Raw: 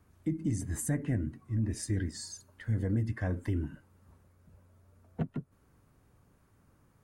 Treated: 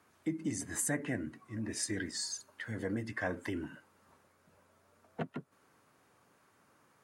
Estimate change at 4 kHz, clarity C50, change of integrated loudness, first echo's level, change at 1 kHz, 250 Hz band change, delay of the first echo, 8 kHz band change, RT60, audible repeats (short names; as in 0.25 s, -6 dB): +5.5 dB, none, -3.5 dB, none, +4.5 dB, -3.5 dB, none, +4.0 dB, none, none